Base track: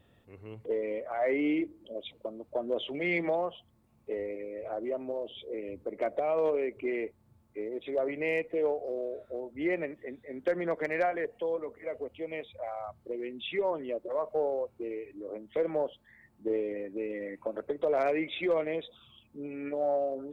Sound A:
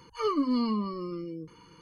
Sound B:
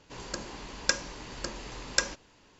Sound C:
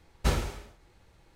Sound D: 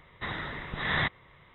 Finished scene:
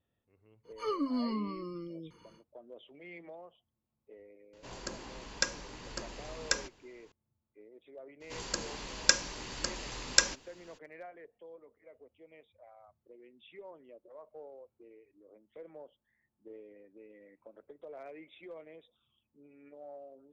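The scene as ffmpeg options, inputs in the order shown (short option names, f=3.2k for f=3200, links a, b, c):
-filter_complex "[2:a]asplit=2[a][b];[0:a]volume=-19.5dB[c];[b]highshelf=f=2.1k:g=6[d];[1:a]atrim=end=1.81,asetpts=PTS-STARTPTS,volume=-6dB,afade=t=in:d=0.1,afade=t=out:st=1.71:d=0.1,adelay=630[e];[a]atrim=end=2.59,asetpts=PTS-STARTPTS,volume=-4.5dB,afade=t=in:d=0.004:c=hsin,afade=t=out:st=2.586:d=0.004:c=hsin,adelay=199773S[f];[d]atrim=end=2.59,asetpts=PTS-STARTPTS,volume=-2dB,afade=t=in:d=0.02,afade=t=out:st=2.57:d=0.02,adelay=8200[g];[c][e][f][g]amix=inputs=4:normalize=0"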